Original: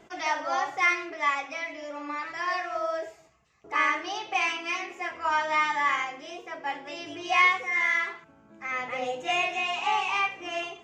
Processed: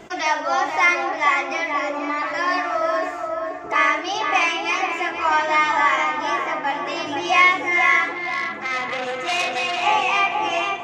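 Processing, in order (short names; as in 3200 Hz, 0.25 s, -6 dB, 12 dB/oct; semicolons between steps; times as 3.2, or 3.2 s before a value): in parallel at +2.5 dB: compressor, threshold -40 dBFS, peak gain reduction 21 dB; on the sum: darkening echo 0.482 s, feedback 58%, low-pass 1600 Hz, level -3.5 dB; 8.14–9.83 core saturation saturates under 3100 Hz; gain +5 dB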